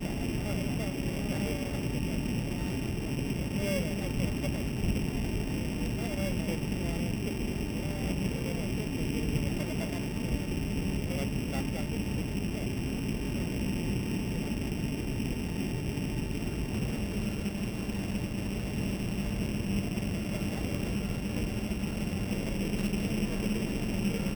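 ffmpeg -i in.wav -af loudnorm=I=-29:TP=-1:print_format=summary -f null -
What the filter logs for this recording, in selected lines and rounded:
Input Integrated:    -32.8 LUFS
Input True Peak:     -16.7 dBTP
Input LRA:             1.3 LU
Input Threshold:     -42.8 LUFS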